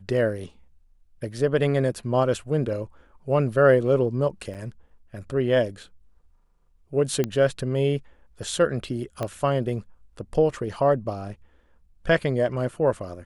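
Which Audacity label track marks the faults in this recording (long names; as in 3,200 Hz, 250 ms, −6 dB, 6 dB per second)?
4.540000	4.550000	drop-out 8 ms
7.240000	7.240000	click −12 dBFS
9.230000	9.230000	click −15 dBFS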